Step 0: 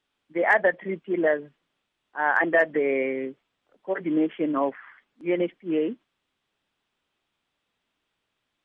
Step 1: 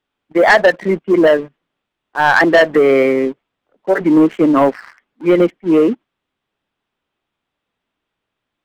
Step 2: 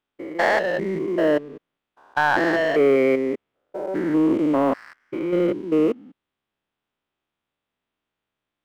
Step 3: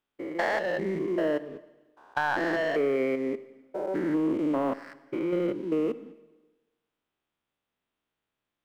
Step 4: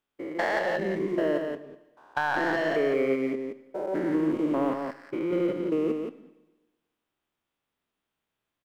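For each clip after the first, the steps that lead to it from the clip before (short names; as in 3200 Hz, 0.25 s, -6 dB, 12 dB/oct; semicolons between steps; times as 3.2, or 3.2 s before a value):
high shelf 2600 Hz -8.5 dB; sample leveller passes 2; gain +7.5 dB
stepped spectrum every 0.2 s; gain -5 dB
compressor 2.5:1, threshold -24 dBFS, peak gain reduction 7 dB; Schroeder reverb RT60 1.2 s, DRR 15.5 dB; gain -2.5 dB
echo 0.173 s -5 dB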